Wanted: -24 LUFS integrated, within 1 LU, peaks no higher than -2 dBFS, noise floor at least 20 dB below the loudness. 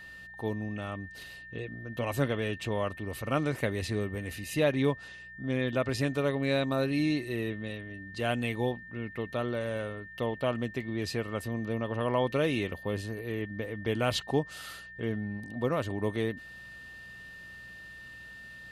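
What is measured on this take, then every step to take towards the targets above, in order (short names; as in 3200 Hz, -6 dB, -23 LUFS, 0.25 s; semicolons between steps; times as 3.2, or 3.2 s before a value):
hum 60 Hz; harmonics up to 180 Hz; hum level -60 dBFS; steady tone 1800 Hz; tone level -45 dBFS; loudness -32.5 LUFS; peak -14.5 dBFS; loudness target -24.0 LUFS
-> de-hum 60 Hz, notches 3; notch 1800 Hz, Q 30; gain +8.5 dB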